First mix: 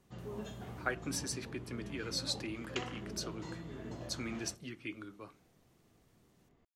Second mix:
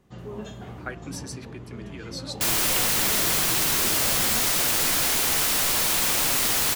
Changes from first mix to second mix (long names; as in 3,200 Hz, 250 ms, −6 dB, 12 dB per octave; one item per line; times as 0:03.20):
first sound +7.0 dB
second sound: unmuted